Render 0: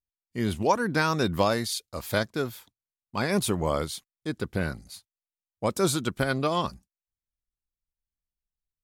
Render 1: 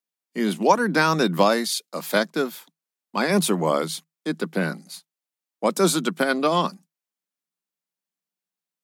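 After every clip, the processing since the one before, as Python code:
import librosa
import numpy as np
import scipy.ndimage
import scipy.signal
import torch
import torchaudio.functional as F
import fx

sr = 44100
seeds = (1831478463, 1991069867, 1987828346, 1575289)

y = scipy.signal.sosfilt(scipy.signal.cheby1(8, 1.0, 160.0, 'highpass', fs=sr, output='sos'), x)
y = y * librosa.db_to_amplitude(6.0)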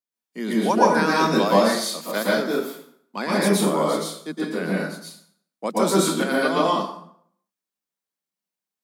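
y = fx.rev_plate(x, sr, seeds[0], rt60_s=0.64, hf_ratio=0.75, predelay_ms=105, drr_db=-5.5)
y = y * librosa.db_to_amplitude(-6.0)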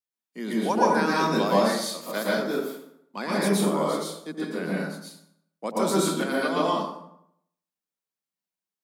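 y = fx.echo_wet_lowpass(x, sr, ms=80, feedback_pct=44, hz=1200.0, wet_db=-9.0)
y = y * librosa.db_to_amplitude(-4.5)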